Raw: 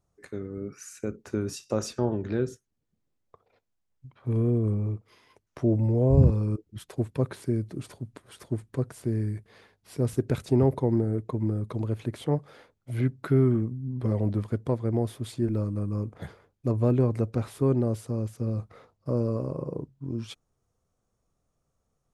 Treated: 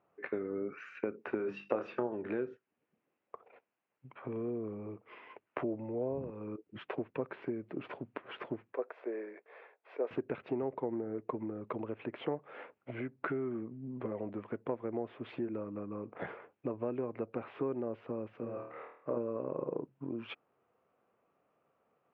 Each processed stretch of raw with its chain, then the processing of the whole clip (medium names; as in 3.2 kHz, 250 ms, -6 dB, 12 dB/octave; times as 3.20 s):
1.37–2.07 s: hum notches 50/100/150/200/250/300/350 Hz + doubling 25 ms -7 dB
8.72–10.11 s: ladder high-pass 400 Hz, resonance 35% + band-stop 2.9 kHz, Q 9.7
18.40–19.17 s: high-pass 1.5 kHz 6 dB/octave + tilt EQ -4 dB/octave + flutter echo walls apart 4.4 m, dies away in 0.55 s
whole clip: Chebyshev low-pass 2.7 kHz, order 4; compression 6:1, threshold -37 dBFS; high-pass 330 Hz 12 dB/octave; trim +8.5 dB